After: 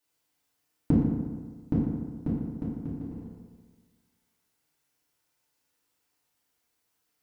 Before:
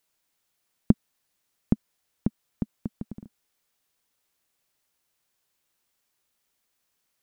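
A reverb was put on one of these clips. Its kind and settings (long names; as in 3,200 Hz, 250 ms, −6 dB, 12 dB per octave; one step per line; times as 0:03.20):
feedback delay network reverb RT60 1.5 s, low-frequency decay 1×, high-frequency decay 0.55×, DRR −8.5 dB
level −8.5 dB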